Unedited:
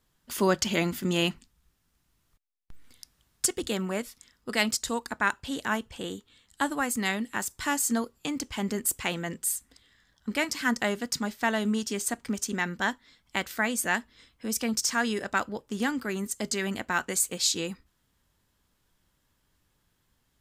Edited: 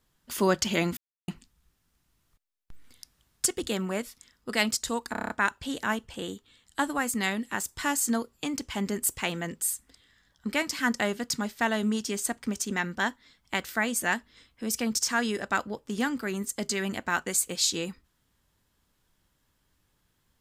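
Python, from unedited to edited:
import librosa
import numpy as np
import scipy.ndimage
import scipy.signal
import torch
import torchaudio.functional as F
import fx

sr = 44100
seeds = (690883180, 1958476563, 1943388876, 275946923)

y = fx.edit(x, sr, fx.silence(start_s=0.97, length_s=0.31),
    fx.stutter(start_s=5.12, slice_s=0.03, count=7), tone=tone)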